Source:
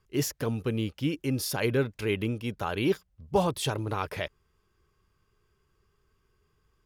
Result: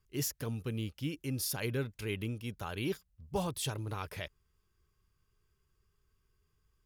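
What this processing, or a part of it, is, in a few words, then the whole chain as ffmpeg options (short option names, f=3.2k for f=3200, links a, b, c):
smiley-face EQ: -af "lowshelf=f=120:g=5,equalizer=f=550:t=o:w=2.8:g=-4,highshelf=f=6.4k:g=7.5,volume=-7dB"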